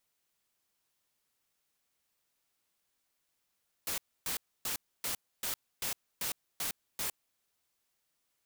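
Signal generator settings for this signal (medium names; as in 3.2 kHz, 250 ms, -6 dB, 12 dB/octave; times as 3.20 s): noise bursts white, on 0.11 s, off 0.28 s, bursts 9, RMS -35 dBFS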